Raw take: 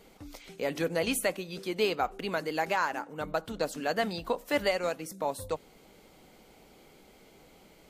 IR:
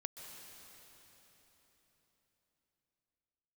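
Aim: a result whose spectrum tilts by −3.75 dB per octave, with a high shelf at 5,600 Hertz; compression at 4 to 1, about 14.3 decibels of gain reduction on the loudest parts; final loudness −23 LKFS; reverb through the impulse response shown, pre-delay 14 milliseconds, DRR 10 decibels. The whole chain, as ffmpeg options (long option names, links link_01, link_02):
-filter_complex "[0:a]highshelf=frequency=5600:gain=7,acompressor=threshold=-41dB:ratio=4,asplit=2[link_01][link_02];[1:a]atrim=start_sample=2205,adelay=14[link_03];[link_02][link_03]afir=irnorm=-1:irlink=0,volume=-7.5dB[link_04];[link_01][link_04]amix=inputs=2:normalize=0,volume=19.5dB"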